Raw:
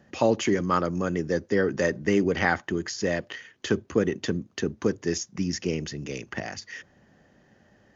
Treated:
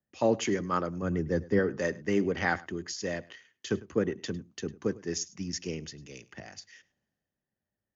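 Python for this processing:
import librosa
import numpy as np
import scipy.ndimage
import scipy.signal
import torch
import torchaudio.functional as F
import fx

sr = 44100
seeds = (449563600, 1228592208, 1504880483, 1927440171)

p1 = fx.low_shelf(x, sr, hz=200.0, db=9.0, at=(1.02, 1.59))
p2 = p1 + fx.echo_single(p1, sr, ms=104, db=-19.5, dry=0)
p3 = fx.band_widen(p2, sr, depth_pct=70)
y = p3 * 10.0 ** (-6.0 / 20.0)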